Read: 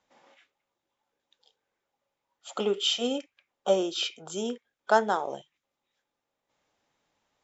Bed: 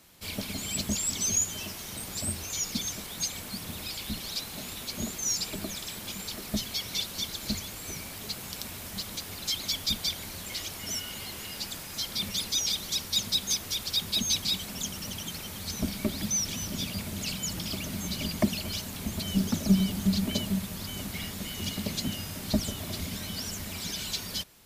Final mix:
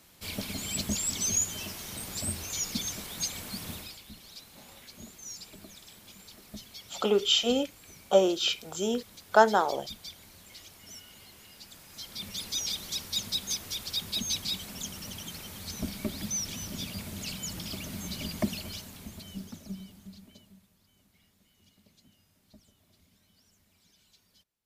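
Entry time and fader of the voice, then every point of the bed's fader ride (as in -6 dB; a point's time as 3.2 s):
4.45 s, +2.5 dB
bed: 3.73 s -1 dB
4.03 s -13.5 dB
11.63 s -13.5 dB
12.57 s -4 dB
18.54 s -4 dB
20.78 s -30.5 dB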